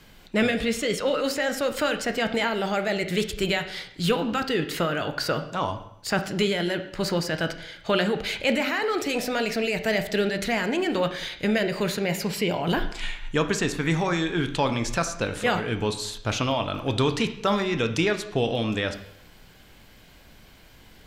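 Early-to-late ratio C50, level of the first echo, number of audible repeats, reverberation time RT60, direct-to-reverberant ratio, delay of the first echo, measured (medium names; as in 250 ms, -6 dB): 11.0 dB, no echo, no echo, 0.75 s, 7.5 dB, no echo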